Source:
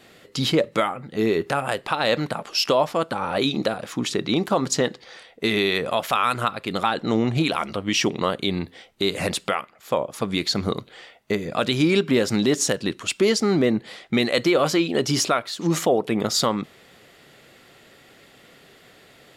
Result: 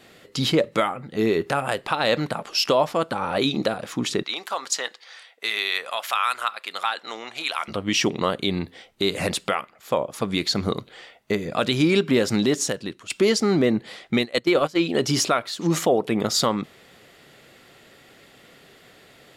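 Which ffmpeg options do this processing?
-filter_complex "[0:a]asettb=1/sr,asplit=3[a][b][c];[a]atrim=end=4.234[d];[b]atrim=start=4.23:end=7.68,asetpts=PTS-STARTPTS,afade=t=in:d=0.004:c=qsin,afade=t=out:st=3.446:d=0.004:c=qsin,highpass=1k[e];[c]atrim=start=7.676[f];[d][e]acrossfade=d=0.004:c1=hsin:c2=qsin[g];[g][f]acrossfade=d=0.004:c1=qsin:c2=hsin,asplit=3[h][i][j];[h]afade=t=out:st=14.16:d=0.02[k];[i]agate=range=-19dB:threshold=-20dB:ratio=16:release=100:detection=peak,afade=t=in:st=14.16:d=0.02,afade=t=out:st=14.78:d=0.02[l];[j]afade=t=in:st=14.78:d=0.02[m];[k][l][m]amix=inputs=3:normalize=0,asplit=2[n][o];[n]atrim=end=13.1,asetpts=PTS-STARTPTS,afade=t=out:st=12.4:d=0.7:silence=0.237137[p];[o]atrim=start=13.1,asetpts=PTS-STARTPTS,afade=t=in:d=0.004:c=hsin:silence=0.237137[q];[p][q]concat=n=2:v=0:a=1"

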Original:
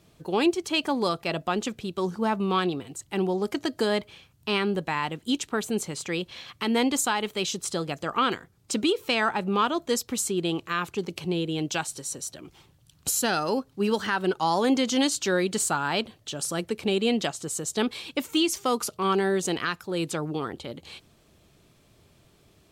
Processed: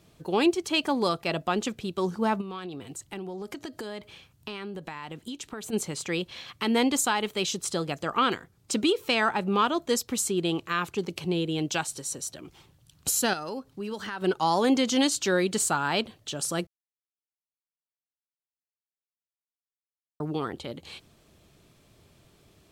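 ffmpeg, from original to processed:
-filter_complex "[0:a]asplit=3[a][b][c];[a]afade=t=out:st=2.4:d=0.02[d];[b]acompressor=threshold=-33dB:ratio=10:attack=3.2:release=140:knee=1:detection=peak,afade=t=in:st=2.4:d=0.02,afade=t=out:st=5.72:d=0.02[e];[c]afade=t=in:st=5.72:d=0.02[f];[d][e][f]amix=inputs=3:normalize=0,asettb=1/sr,asplit=3[g][h][i];[g]atrim=end=13.334[j];[h]atrim=start=13.33:end=14.22,asetpts=PTS-STARTPTS,afade=t=in:d=0.004:c=qsin,afade=t=out:st=0.886:d=0.004:c=qsin,acompressor=threshold=-35dB:ratio=2.5:attack=3.2:release=140:knee=1:detection=peak[k];[i]atrim=start=14.216[l];[j][k]acrossfade=d=0.004:c1=hsin:c2=qsin[m];[m][l]acrossfade=d=0.004:c1=qsin:c2=hsin,asplit=3[n][o][p];[n]atrim=end=16.67,asetpts=PTS-STARTPTS,afade=t=out:st=16.666:d=0.004:c=hsin[q];[o]atrim=start=16.67:end=20.2,asetpts=PTS-STARTPTS,volume=0[r];[p]atrim=start=20.2,asetpts=PTS-STARTPTS,afade=t=in:d=0.004:c=hsin[s];[q][r][s]concat=n=3:v=0:a=1"

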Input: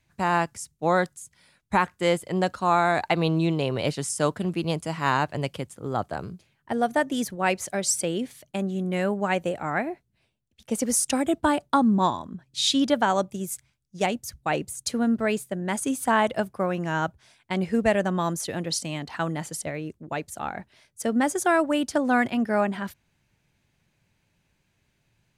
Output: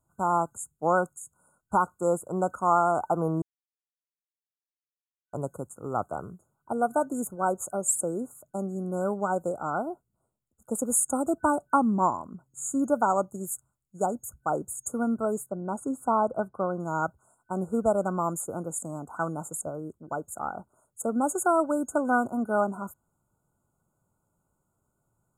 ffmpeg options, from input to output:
-filter_complex "[0:a]asettb=1/sr,asplit=3[a][b][c];[a]atrim=end=15.464[d];[b]atrim=start=15.46:end=16.8,asetpts=PTS-STARTPTS,afade=t=in:d=0.004:c=qsin,afade=t=out:st=1.336:d=0.004:c=qsin,lowpass=f=1.7k:p=1[e];[c]atrim=start=16.796[f];[d][e]acrossfade=d=0.004:c1=hsin:c2=qsin[g];[g][f]acrossfade=d=0.004:c1=qsin:c2=hsin,asplit=3[h][i][j];[h]atrim=end=3.42,asetpts=PTS-STARTPTS,afade=t=out:st=3.416:d=0.004:c=hsin[k];[i]atrim=start=3.42:end=5.33,asetpts=PTS-STARTPTS,volume=0[l];[j]atrim=start=5.33,asetpts=PTS-STARTPTS,afade=t=in:d=0.004:c=hsin[m];[k][l][m]concat=n=3:v=0:a=1,afftfilt=real='re*(1-between(b*sr/4096,1500,6600))':imag='im*(1-between(b*sr/4096,1500,6600))':win_size=4096:overlap=0.75,lowshelf=f=310:g=-7"

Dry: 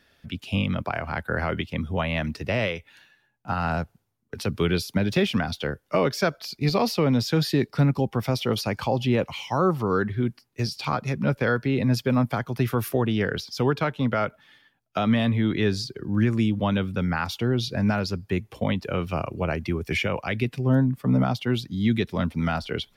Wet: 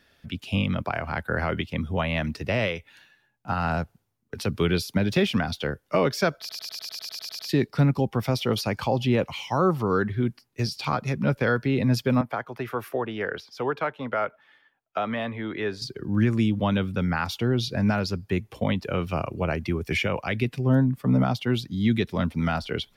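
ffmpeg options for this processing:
-filter_complex "[0:a]asettb=1/sr,asplit=3[a][b][c];[a]atrim=end=12.214[d];[b]atrim=start=12.21:end=15.82,asetpts=PTS-STARTPTS,afade=t=in:d=0.004:c=qsin,afade=t=out:st=3.606:d=0.004:c=qsin,acrossover=split=370 2500:gain=0.2 1 0.251[e][f][g];[e][f][g]amix=inputs=3:normalize=0[h];[c]atrim=start=15.816[i];[d][h]acrossfade=d=0.004:c1=hsin:c2=qsin[j];[j][i]acrossfade=d=0.004:c1=qsin:c2=hsin,asplit=12[k][l][m][n][o][p][q][r][s][t][u][v];[k]atrim=end=6.492[w];[l]atrim=start=6.388:end=6.492[x];[m]atrim=start=6.388:end=6.492[y];[n]atrim=start=6.388:end=6.492[z];[o]atrim=start=6.388:end=6.492[aa];[p]atrim=start=6.388:end=6.492[ab];[q]atrim=start=6.388:end=6.492[ac];[r]atrim=start=6.388:end=6.492[ad];[s]atrim=start=6.388:end=6.492[ae];[t]atrim=start=6.388:end=6.492[af];[u]atrim=start=6.388:end=6.492[ag];[v]atrim=start=7.488[ah];[w][x]acrossfade=d=0.004:c1=hsin:c2=hsin[ai];[ai][y]acrossfade=d=0.004:c1=hsin:c2=hsin[aj];[aj][z]acrossfade=d=0.004:c1=hsin:c2=hsin[ak];[ak][aa]acrossfade=d=0.004:c1=hsin:c2=hsin[al];[al][ab]acrossfade=d=0.004:c1=hsin:c2=hsin[am];[am][ac]acrossfade=d=0.004:c1=hsin:c2=hsin[an];[an][ad]acrossfade=d=0.004:c1=hsin:c2=hsin[ao];[ao][ae]acrossfade=d=0.004:c1=hsin:c2=hsin[ap];[ap][af]acrossfade=d=0.004:c1=hsin:c2=hsin[aq];[aq][ag]acrossfade=d=0.004:c1=hsin:c2=hsin[ar];[ar][ah]acrossfade=d=0.004:c1=hsin:c2=hsin"

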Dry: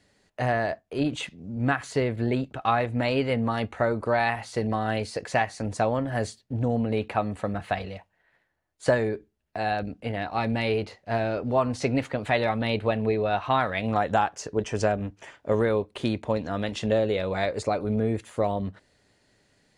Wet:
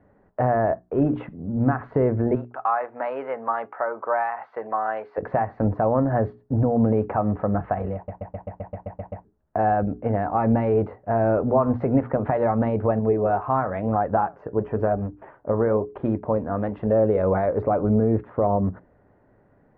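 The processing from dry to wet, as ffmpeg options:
-filter_complex "[0:a]asettb=1/sr,asplit=3[a][b][c];[a]atrim=end=2.354[d];[b]atrim=start=2.35:end=5.18,asetpts=PTS-STARTPTS,afade=t=in:d=0.004:c=qsin,afade=t=out:st=2.826:d=0.004:c=qsin,highpass=880[e];[c]atrim=start=5.176[f];[d][e]acrossfade=d=0.004:c1=hsin:c2=qsin[g];[g][f]acrossfade=d=0.004:c1=qsin:c2=hsin,asettb=1/sr,asplit=3[h][i][j];[h]atrim=end=12.994[k];[i]atrim=start=12.99:end=16.92,asetpts=PTS-STARTPTS,afade=t=in:d=0.004:c=qsin,afade=t=out:st=3.926:d=0.004:c=qsin,flanger=delay=1.2:depth=7.3:regen=74:speed=1:shape=sinusoidal[l];[j]atrim=start=16.916[m];[k][l]acrossfade=d=0.004:c1=hsin:c2=qsin[n];[n][m]acrossfade=d=0.004:c1=qsin:c2=hsin,asplit=11[o][p][q][r][s][t][u][v][w][x][y];[o]atrim=end=8.082[z];[p]atrim=start=7.948:end=8.082[aa];[q]atrim=start=7.948:end=8.082[ab];[r]atrim=start=7.948:end=8.082[ac];[s]atrim=start=7.948:end=8.082[ad];[t]atrim=start=7.948:end=8.082[ae];[u]atrim=start=7.948:end=8.082[af];[v]atrim=start=7.948:end=8.082[ag];[w]atrim=start=7.948:end=8.082[ah];[x]atrim=start=7.948:end=8.082[ai];[y]atrim=start=9.248[aj];[z][aa]acrossfade=d=0.004:c1=hsin:c2=hsin[ak];[ak][ab]acrossfade=d=0.004:c1=hsin:c2=hsin[al];[al][ac]acrossfade=d=0.004:c1=hsin:c2=hsin[am];[am][ad]acrossfade=d=0.004:c1=hsin:c2=hsin[an];[an][ae]acrossfade=d=0.004:c1=hsin:c2=hsin[ao];[ao][af]acrossfade=d=0.004:c1=hsin:c2=hsin[ap];[ap][ag]acrossfade=d=0.004:c1=hsin:c2=hsin[aq];[aq][ah]acrossfade=d=0.004:c1=hsin:c2=hsin[ar];[ar][ai]acrossfade=d=0.004:c1=hsin:c2=hsin[as];[as][aj]acrossfade=d=0.004:c1=hsin:c2=hsin,alimiter=limit=-19dB:level=0:latency=1:release=118,lowpass=f=1.3k:w=0.5412,lowpass=f=1.3k:w=1.3066,bandreject=f=60:t=h:w=6,bandreject=f=120:t=h:w=6,bandreject=f=180:t=h:w=6,bandreject=f=240:t=h:w=6,bandreject=f=300:t=h:w=6,bandreject=f=360:t=h:w=6,bandreject=f=420:t=h:w=6,volume=9dB"

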